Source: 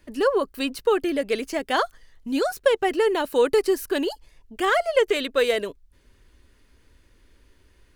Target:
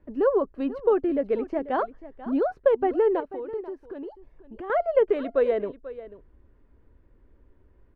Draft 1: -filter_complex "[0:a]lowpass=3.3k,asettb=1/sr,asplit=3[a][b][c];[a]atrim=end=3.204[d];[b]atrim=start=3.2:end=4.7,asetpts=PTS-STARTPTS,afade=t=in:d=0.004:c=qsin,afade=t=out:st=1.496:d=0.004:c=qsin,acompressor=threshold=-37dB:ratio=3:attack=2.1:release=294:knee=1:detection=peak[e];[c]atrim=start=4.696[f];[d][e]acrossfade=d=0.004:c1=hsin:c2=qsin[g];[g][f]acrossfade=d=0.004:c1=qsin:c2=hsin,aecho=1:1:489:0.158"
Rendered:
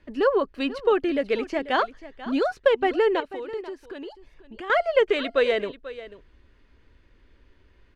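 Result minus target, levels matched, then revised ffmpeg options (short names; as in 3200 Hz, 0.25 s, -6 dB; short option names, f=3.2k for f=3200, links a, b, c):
4000 Hz band +18.0 dB
-filter_complex "[0:a]lowpass=920,asettb=1/sr,asplit=3[a][b][c];[a]atrim=end=3.204[d];[b]atrim=start=3.2:end=4.7,asetpts=PTS-STARTPTS,afade=t=in:d=0.004:c=qsin,afade=t=out:st=1.496:d=0.004:c=qsin,acompressor=threshold=-37dB:ratio=3:attack=2.1:release=294:knee=1:detection=peak[e];[c]atrim=start=4.696[f];[d][e]acrossfade=d=0.004:c1=hsin:c2=qsin[g];[g][f]acrossfade=d=0.004:c1=qsin:c2=hsin,aecho=1:1:489:0.158"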